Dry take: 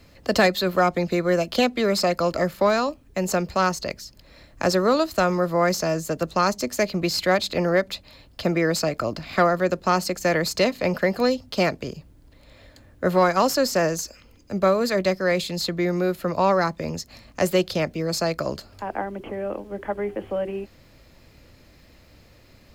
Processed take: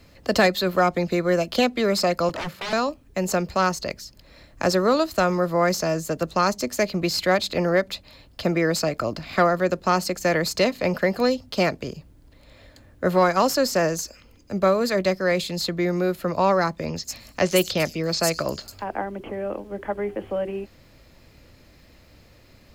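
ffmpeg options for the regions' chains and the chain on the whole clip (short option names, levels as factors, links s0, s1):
-filter_complex "[0:a]asettb=1/sr,asplit=3[s0][s1][s2];[s0]atrim=end=2.294[s3];[s1]atrim=start=2.29:end=2.73,asetpts=PTS-STARTPTS,afade=t=in:d=0.004:c=qsin,afade=t=out:st=0.436:d=0.004:c=qsin,highpass=f=73:w=0.5412,highpass=f=73:w=1.3066,aeval=exprs='0.0596*(abs(mod(val(0)/0.0596+3,4)-2)-1)':c=same,acrossover=split=5600[s4][s5];[s5]acompressor=threshold=0.00355:ratio=4:attack=1:release=60[s6];[s4][s6]amix=inputs=2:normalize=0[s7];[s2]atrim=start=2.726[s8];[s3][s7]acrossfade=d=0.004:c1=hsin:c2=qsin[s9];[s9][s8]acrossfade=d=0.004:c1=qsin:c2=hsin,asettb=1/sr,asplit=3[s10][s11][s12];[s10]atrim=end=16.864[s13];[s11]atrim=start=16.86:end=18.84,asetpts=PTS-STARTPTS,afade=t=in:d=0.004:c=qsin,afade=t=out:st=1.976:d=0.004:c=qsin,highshelf=f=2400:g=8,acrossover=split=5500[s14][s15];[s15]adelay=100[s16];[s14][s16]amix=inputs=2:normalize=0,atrim=end_sample=87318[s17];[s12]atrim=start=18.836[s18];[s13][s17]acrossfade=d=0.004:c1=hsin:c2=qsin[s19];[s19][s18]acrossfade=d=0.004:c1=qsin:c2=hsin"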